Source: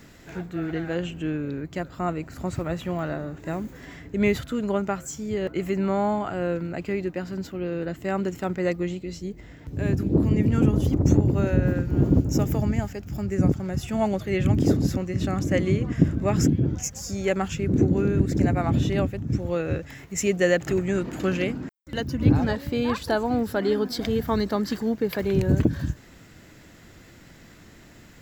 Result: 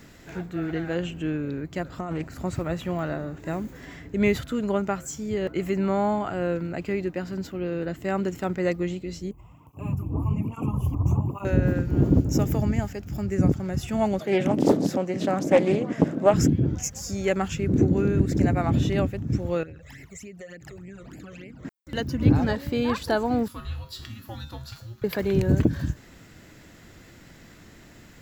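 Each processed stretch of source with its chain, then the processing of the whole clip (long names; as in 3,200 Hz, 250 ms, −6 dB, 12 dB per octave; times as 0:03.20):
0:01.85–0:02.28: compressor whose output falls as the input rises −30 dBFS + highs frequency-modulated by the lows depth 0.18 ms
0:09.31–0:11.45: drawn EQ curve 110 Hz 0 dB, 340 Hz −10 dB, 510 Hz −11 dB, 1,100 Hz +12 dB, 1,700 Hz −26 dB, 2,600 Hz 0 dB, 3,900 Hz −21 dB, 11,000 Hz +2 dB + through-zero flanger with one copy inverted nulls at 1.2 Hz, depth 5.8 ms
0:14.19–0:16.34: high-pass filter 170 Hz 24 dB per octave + parametric band 610 Hz +9.5 dB 0.98 octaves + highs frequency-modulated by the lows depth 0.56 ms
0:19.63–0:21.65: all-pass phaser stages 12, 3.4 Hz, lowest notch 260–1,200 Hz + downward compressor 8 to 1, threshold −39 dBFS
0:23.48–0:25.04: tilt shelving filter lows −4 dB, about 1,400 Hz + frequency shifter −340 Hz + tuned comb filter 74 Hz, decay 0.44 s, harmonics odd, mix 80%
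whole clip: no processing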